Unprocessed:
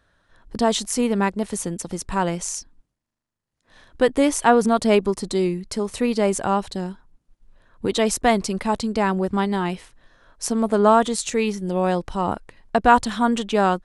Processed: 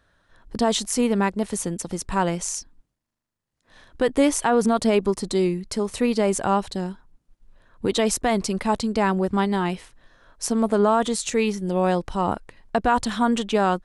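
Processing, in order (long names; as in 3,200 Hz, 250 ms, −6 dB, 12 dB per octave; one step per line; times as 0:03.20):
brickwall limiter −9 dBFS, peak gain reduction 7 dB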